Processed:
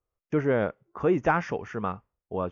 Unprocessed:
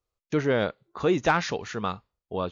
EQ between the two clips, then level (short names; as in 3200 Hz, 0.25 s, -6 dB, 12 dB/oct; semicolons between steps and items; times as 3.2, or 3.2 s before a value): running mean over 11 samples; 0.0 dB